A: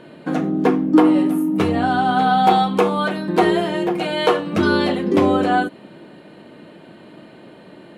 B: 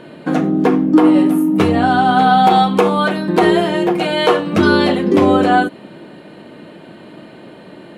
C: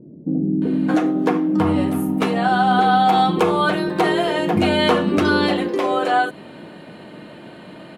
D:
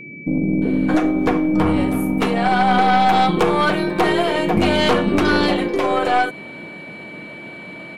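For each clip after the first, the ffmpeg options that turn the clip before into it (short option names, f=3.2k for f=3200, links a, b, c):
-af "alimiter=level_in=6dB:limit=-1dB:release=50:level=0:latency=1,volume=-1dB"
-filter_complex "[0:a]acompressor=threshold=-14dB:ratio=2,acrossover=split=360[a][b];[b]adelay=620[c];[a][c]amix=inputs=2:normalize=0"
-af "aeval=exprs='0.708*(cos(1*acos(clip(val(0)/0.708,-1,1)))-cos(1*PI/2))+0.158*(cos(4*acos(clip(val(0)/0.708,-1,1)))-cos(4*PI/2))+0.224*(cos(5*acos(clip(val(0)/0.708,-1,1)))-cos(5*PI/2))+0.0794*(cos(7*acos(clip(val(0)/0.708,-1,1)))-cos(7*PI/2))':c=same,aeval=exprs='val(0)+0.0282*sin(2*PI*2300*n/s)':c=same,volume=-4dB"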